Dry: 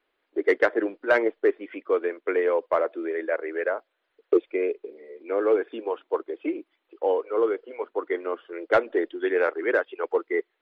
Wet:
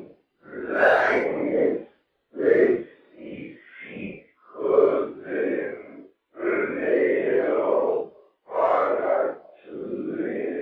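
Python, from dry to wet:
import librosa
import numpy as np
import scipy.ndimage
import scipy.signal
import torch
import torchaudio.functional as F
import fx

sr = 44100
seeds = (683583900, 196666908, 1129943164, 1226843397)

y = fx.whisperise(x, sr, seeds[0])
y = fx.paulstretch(y, sr, seeds[1], factor=4.8, window_s=0.05, from_s=0.93)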